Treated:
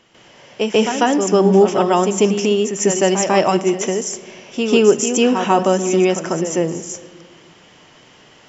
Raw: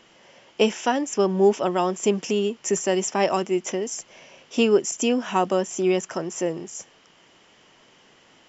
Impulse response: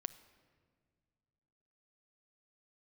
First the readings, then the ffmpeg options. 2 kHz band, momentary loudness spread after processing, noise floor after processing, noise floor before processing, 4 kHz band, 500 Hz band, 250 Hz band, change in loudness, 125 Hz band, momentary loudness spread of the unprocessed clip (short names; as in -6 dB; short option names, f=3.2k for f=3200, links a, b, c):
+7.0 dB, 11 LU, -48 dBFS, -56 dBFS, +7.0 dB, +7.0 dB, +8.0 dB, +7.0 dB, +9.5 dB, 11 LU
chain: -filter_complex "[0:a]equalizer=f=99:w=1.1:g=5,asplit=2[a][b];[1:a]atrim=start_sample=2205,adelay=146[c];[b][c]afir=irnorm=-1:irlink=0,volume=10dB[d];[a][d]amix=inputs=2:normalize=0,alimiter=level_in=0dB:limit=-1dB:release=50:level=0:latency=1,volume=-1dB"